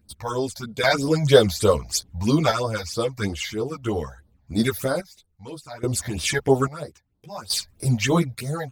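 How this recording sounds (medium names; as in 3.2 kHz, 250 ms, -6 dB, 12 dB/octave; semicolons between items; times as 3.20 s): phasing stages 8, 3.1 Hz, lowest notch 340–2400 Hz; random-step tremolo 1.2 Hz, depth 90%; a shimmering, thickened sound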